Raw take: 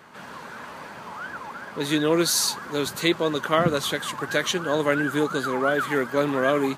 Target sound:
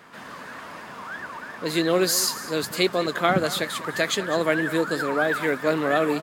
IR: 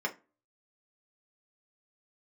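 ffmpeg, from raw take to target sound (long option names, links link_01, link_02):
-af "aecho=1:1:221:0.158,asetrate=48000,aresample=44100"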